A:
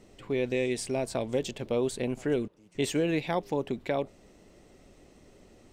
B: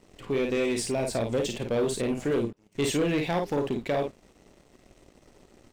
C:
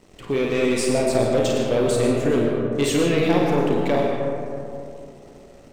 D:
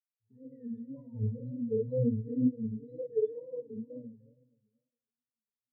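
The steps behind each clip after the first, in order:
on a send: early reflections 35 ms -11 dB, 52 ms -6 dB; on the sum: sample leveller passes 2; gain -4 dB
digital reverb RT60 2.8 s, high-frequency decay 0.3×, pre-delay 65 ms, DRR 0.5 dB; gain +4.5 dB
octave resonator A#, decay 0.19 s; wow and flutter 130 cents; spectral expander 2.5:1

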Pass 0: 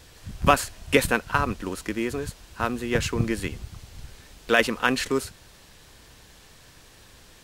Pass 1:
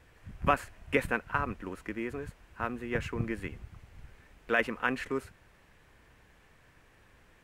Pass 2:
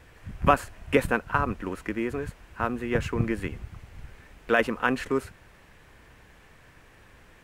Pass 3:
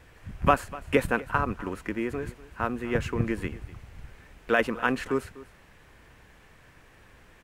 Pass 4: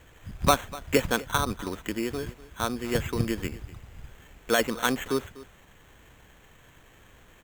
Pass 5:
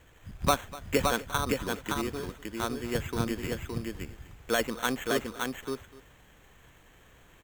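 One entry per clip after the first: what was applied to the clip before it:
resonant high shelf 3000 Hz -10 dB, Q 1.5; gain -8.5 dB
dynamic EQ 2100 Hz, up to -6 dB, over -44 dBFS, Q 1.6; gain +7 dB
echo 0.247 s -18.5 dB; gain -1 dB
sample-and-hold 9×
echo 0.567 s -3.5 dB; gain -4 dB

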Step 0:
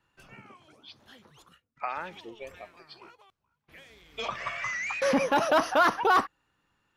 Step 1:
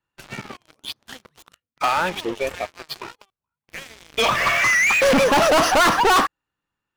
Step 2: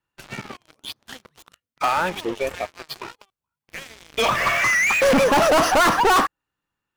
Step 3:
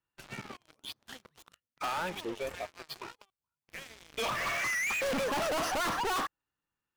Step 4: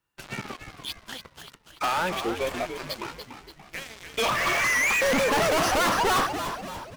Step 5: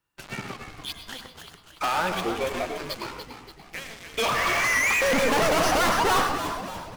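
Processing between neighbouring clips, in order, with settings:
sample leveller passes 5
dynamic EQ 3700 Hz, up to -3 dB, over -33 dBFS, Q 0.73
soft clip -22.5 dBFS, distortion -11 dB; gain -7.5 dB
frequency-shifting echo 0.289 s, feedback 50%, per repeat -97 Hz, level -8.5 dB; gain +8 dB
reverb RT60 0.35 s, pre-delay 98 ms, DRR 7.5 dB

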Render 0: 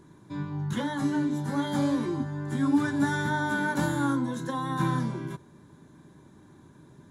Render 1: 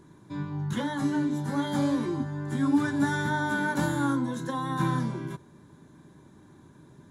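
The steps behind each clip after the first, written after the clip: nothing audible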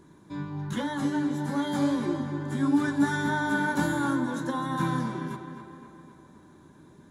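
bell 120 Hz -8 dB 0.38 oct; on a send: tape echo 0.259 s, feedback 59%, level -8 dB, low-pass 3900 Hz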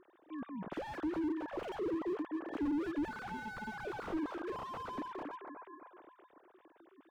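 sine-wave speech; slew limiter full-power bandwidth 13 Hz; gain -4.5 dB

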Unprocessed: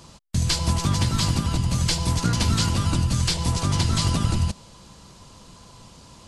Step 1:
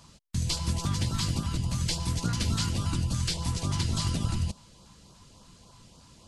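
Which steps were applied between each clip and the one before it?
LFO notch saw up 3.5 Hz 340–2400 Hz; gain -6.5 dB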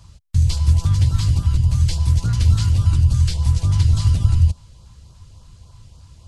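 resonant low shelf 140 Hz +13.5 dB, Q 1.5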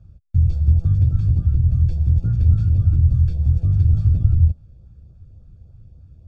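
running mean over 44 samples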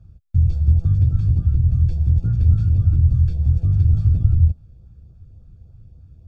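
notch 570 Hz, Q 12

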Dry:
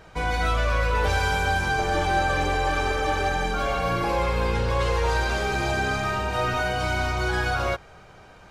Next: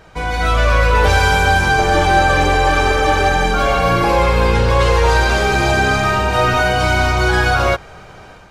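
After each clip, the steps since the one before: AGC gain up to 6.5 dB; gain +4 dB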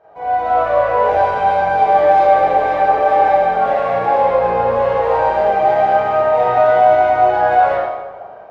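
band-pass 670 Hz, Q 3.9; in parallel at -6 dB: hard clip -24 dBFS, distortion -8 dB; on the sum: reverb RT60 1.1 s, pre-delay 23 ms, DRR -10 dB; gain -3.5 dB

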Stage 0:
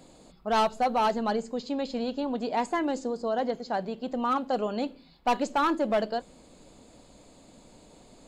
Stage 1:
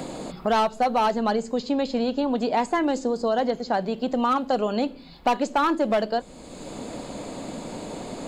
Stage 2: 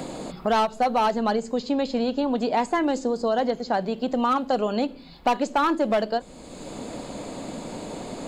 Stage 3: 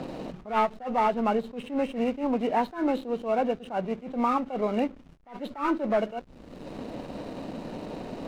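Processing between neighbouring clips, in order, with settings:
three-band squash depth 70%; gain +4.5 dB
ending taper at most 450 dB/s
nonlinear frequency compression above 1200 Hz 1.5:1; backlash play -36.5 dBFS; attack slew limiter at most 180 dB/s; gain -1.5 dB

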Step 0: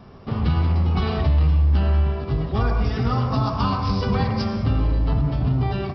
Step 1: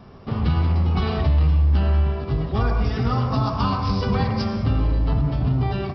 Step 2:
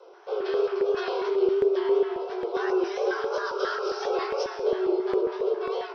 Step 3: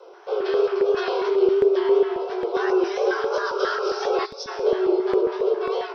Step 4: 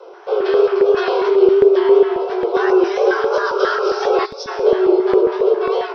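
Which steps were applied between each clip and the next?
nothing audible
frequency shift +320 Hz; chorus 2.9 Hz, delay 16 ms, depth 7.4 ms; LFO notch square 3.7 Hz 510–1800 Hz; gain -1.5 dB
spectral gain 4.26–4.47, 280–3300 Hz -16 dB; gain +4.5 dB
high shelf 4900 Hz -7.5 dB; gain +7 dB

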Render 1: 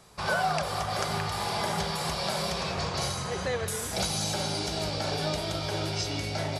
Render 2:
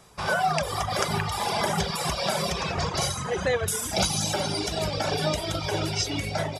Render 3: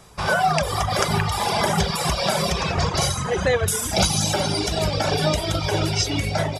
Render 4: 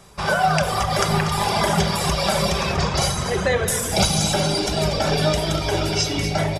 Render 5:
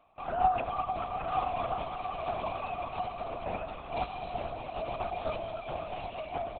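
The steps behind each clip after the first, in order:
reverb removal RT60 1.9 s; notch 4300 Hz, Q 8.8; AGC gain up to 5 dB; gain +2 dB
low shelf 92 Hz +6.5 dB; gain +4.5 dB
echo 0.24 s -11 dB; on a send at -7 dB: reverb RT60 1.5 s, pre-delay 5 ms
vowel filter a; echo 0.916 s -6 dB; LPC vocoder at 8 kHz whisper; gain -4.5 dB

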